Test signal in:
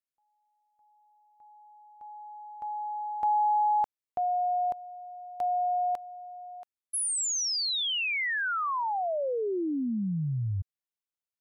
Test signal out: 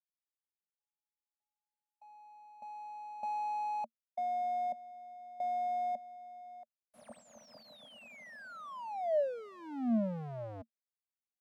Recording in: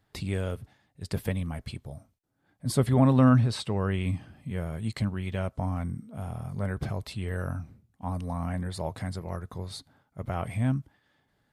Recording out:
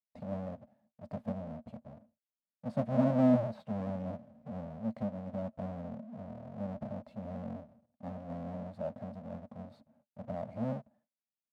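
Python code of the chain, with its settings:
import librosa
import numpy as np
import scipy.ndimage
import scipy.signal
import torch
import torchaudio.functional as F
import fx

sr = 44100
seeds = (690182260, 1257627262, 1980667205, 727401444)

y = fx.halfwave_hold(x, sr)
y = fx.gate_hold(y, sr, open_db=-51.0, close_db=-53.0, hold_ms=133.0, range_db=-34, attack_ms=5.9, release_ms=77.0)
y = fx.double_bandpass(y, sr, hz=370.0, octaves=1.4)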